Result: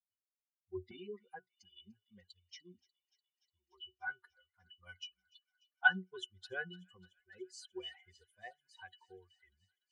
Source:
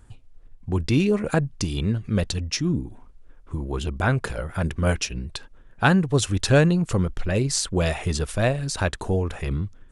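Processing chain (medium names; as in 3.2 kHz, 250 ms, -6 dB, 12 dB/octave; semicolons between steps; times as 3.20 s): expander on every frequency bin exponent 3; high-pass 630 Hz 12 dB/octave, from 0.91 s 1.4 kHz; transient shaper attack -3 dB, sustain +2 dB; pitch-class resonator F#, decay 0.13 s; feedback echo behind a high-pass 295 ms, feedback 77%, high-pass 3.1 kHz, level -22.5 dB; trim +13 dB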